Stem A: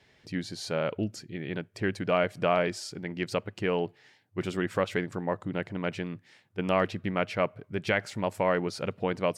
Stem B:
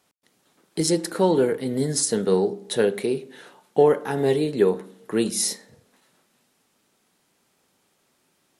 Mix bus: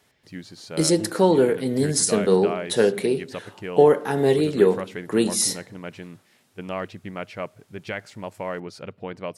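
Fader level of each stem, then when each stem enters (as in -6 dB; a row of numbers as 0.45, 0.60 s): -4.5, +2.0 dB; 0.00, 0.00 s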